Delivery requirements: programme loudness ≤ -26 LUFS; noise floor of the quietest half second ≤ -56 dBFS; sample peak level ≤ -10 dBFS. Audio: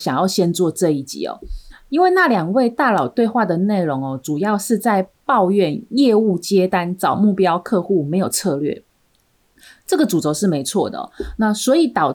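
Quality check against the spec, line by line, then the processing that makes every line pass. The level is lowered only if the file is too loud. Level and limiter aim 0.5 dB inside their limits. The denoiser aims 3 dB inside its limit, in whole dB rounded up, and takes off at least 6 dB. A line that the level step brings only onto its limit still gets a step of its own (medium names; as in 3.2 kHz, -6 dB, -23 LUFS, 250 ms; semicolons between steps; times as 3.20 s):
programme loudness -17.5 LUFS: fail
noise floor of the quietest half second -61 dBFS: pass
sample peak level -5.5 dBFS: fail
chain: trim -9 dB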